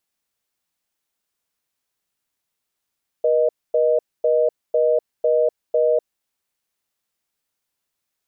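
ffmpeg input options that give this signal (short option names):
-f lavfi -i "aevalsrc='0.141*(sin(2*PI*480*t)+sin(2*PI*620*t))*clip(min(mod(t,0.5),0.25-mod(t,0.5))/0.005,0,1)':d=2.97:s=44100"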